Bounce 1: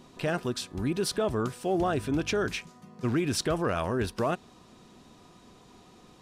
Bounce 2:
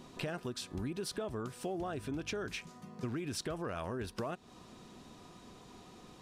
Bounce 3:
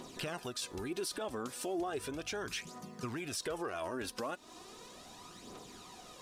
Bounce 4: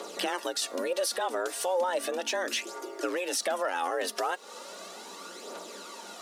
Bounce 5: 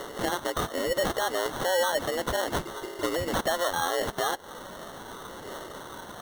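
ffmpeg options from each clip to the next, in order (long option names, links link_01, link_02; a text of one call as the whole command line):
ffmpeg -i in.wav -af "acompressor=threshold=-36dB:ratio=6" out.wav
ffmpeg -i in.wav -af "aphaser=in_gain=1:out_gain=1:delay=4:decay=0.49:speed=0.36:type=triangular,bass=frequency=250:gain=-10,treble=frequency=4000:gain=5,alimiter=level_in=7.5dB:limit=-24dB:level=0:latency=1:release=38,volume=-7.5dB,volume=3dB" out.wav
ffmpeg -i in.wav -af "afreqshift=180,volume=8.5dB" out.wav
ffmpeg -i in.wav -af "acrusher=samples=18:mix=1:aa=0.000001,volume=2.5dB" out.wav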